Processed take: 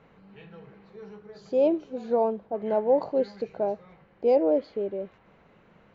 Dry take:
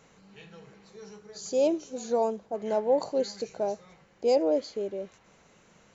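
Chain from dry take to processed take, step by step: distance through air 410 m; trim +3.5 dB

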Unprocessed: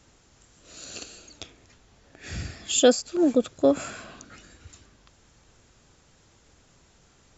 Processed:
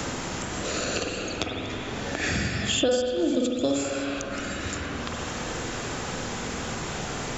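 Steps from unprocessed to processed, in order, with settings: spring tank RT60 1.3 s, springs 46/50 ms, chirp 75 ms, DRR -1 dB; three bands compressed up and down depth 100%; trim +7.5 dB

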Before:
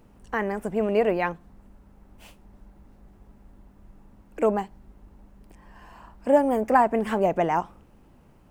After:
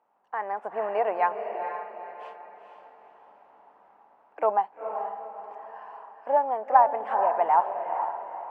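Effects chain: level rider gain up to 14.5 dB; ladder band-pass 950 Hz, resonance 50%; echo that smears into a reverb 468 ms, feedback 40%, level -7 dB; trim +2 dB

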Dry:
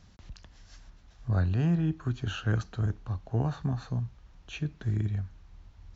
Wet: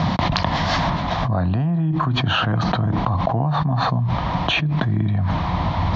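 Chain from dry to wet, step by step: cabinet simulation 140–3700 Hz, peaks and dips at 150 Hz +7 dB, 410 Hz -10 dB, 690 Hz +7 dB, 1 kHz +9 dB, 1.5 kHz -7 dB, 2.7 kHz -7 dB; level flattener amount 100%; trim +1 dB

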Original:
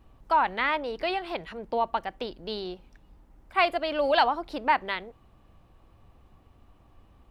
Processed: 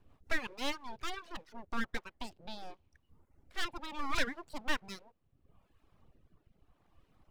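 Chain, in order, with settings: rotary cabinet horn 5.5 Hz, later 0.75 Hz, at 1.69 s; full-wave rectifier; reverb removal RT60 0.96 s; trim -4.5 dB

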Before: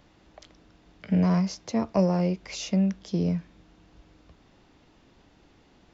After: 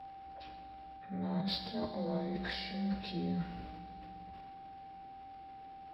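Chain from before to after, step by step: frequency axis rescaled in octaves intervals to 91%; transient shaper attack -2 dB, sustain +10 dB; reverse; compression 5:1, threshold -34 dBFS, peak gain reduction 14 dB; reverse; whistle 780 Hz -46 dBFS; Chebyshev shaper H 7 -35 dB, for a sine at -23.5 dBFS; on a send: reverberation, pre-delay 3 ms, DRR 5 dB; on the sum: trim -1 dB

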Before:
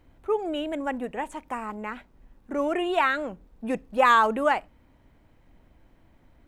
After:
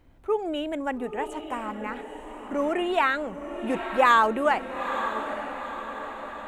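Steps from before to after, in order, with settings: echo that smears into a reverb 902 ms, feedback 54%, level -9 dB

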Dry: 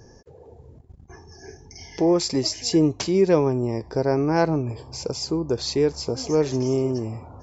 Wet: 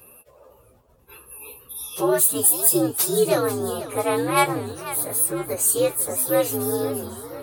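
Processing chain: frequency axis rescaled in octaves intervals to 123%; tilt EQ +3.5 dB/octave; modulated delay 499 ms, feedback 51%, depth 179 cents, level -14 dB; trim +4 dB

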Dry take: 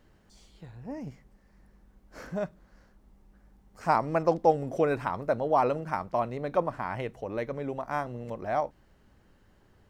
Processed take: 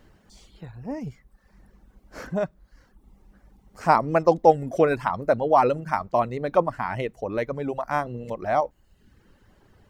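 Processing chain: reverb removal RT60 0.76 s; trim +6.5 dB

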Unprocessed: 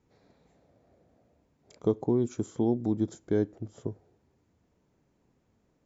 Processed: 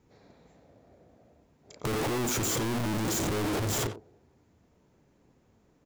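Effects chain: 1.85–3.87 s: one-bit comparator; compression, threshold -36 dBFS, peak gain reduction 7 dB; speakerphone echo 90 ms, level -7 dB; trim +5.5 dB

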